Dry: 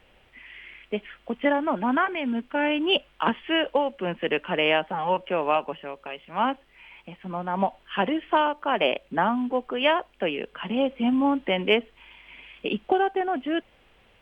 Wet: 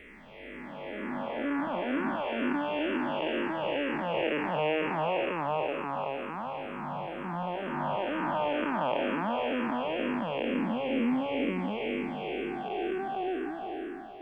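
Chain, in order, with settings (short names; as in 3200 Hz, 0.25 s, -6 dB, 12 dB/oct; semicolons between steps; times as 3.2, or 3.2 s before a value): time blur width 1.3 s; notch 3000 Hz, Q 9.7; endless phaser -2.1 Hz; gain +5 dB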